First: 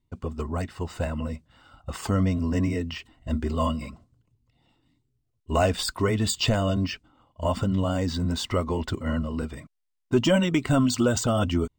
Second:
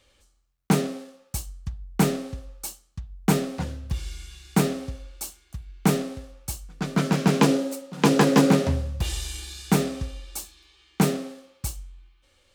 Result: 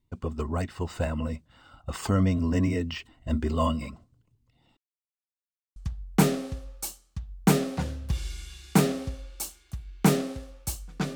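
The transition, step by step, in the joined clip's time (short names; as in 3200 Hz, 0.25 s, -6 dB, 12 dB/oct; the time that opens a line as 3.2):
first
4.77–5.76 mute
5.76 switch to second from 1.57 s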